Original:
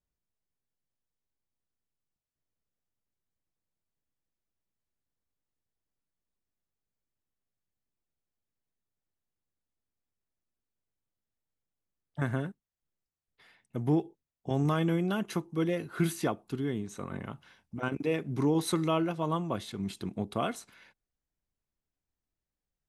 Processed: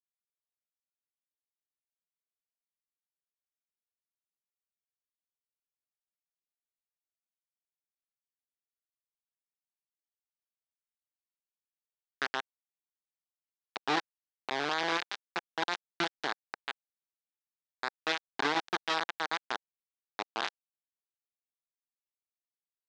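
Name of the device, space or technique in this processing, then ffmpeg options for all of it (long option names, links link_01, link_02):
hand-held game console: -af "acrusher=bits=3:mix=0:aa=0.000001,highpass=460,equalizer=frequency=550:width_type=q:width=4:gain=-8,equalizer=frequency=810:width_type=q:width=4:gain=3,equalizer=frequency=1600:width_type=q:width=4:gain=5,equalizer=frequency=3700:width_type=q:width=4:gain=4,lowpass=frequency=5300:width=0.5412,lowpass=frequency=5300:width=1.3066,volume=-1.5dB"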